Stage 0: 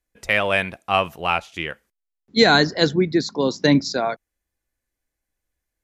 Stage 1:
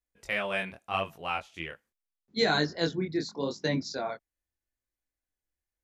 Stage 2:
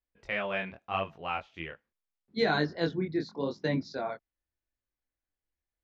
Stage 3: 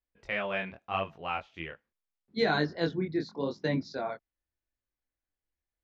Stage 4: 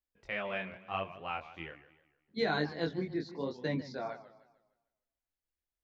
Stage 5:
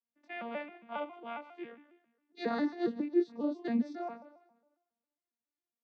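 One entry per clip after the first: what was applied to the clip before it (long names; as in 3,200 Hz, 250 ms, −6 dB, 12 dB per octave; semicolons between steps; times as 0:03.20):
chorus effect 0.81 Hz, delay 19 ms, depth 7.3 ms; level −8 dB
high-frequency loss of the air 210 metres
no processing that can be heard
feedback echo with a swinging delay time 151 ms, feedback 40%, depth 173 cents, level −15 dB; level −4.5 dB
vocoder with an arpeggio as carrier major triad, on A#3, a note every 136 ms; level +2.5 dB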